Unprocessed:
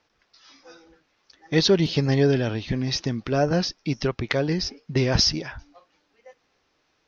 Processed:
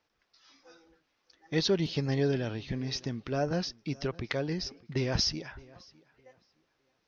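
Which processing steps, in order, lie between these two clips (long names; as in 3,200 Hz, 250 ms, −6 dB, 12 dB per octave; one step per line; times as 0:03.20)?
tape delay 612 ms, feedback 27%, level −22 dB, low-pass 3,600 Hz
level −8.5 dB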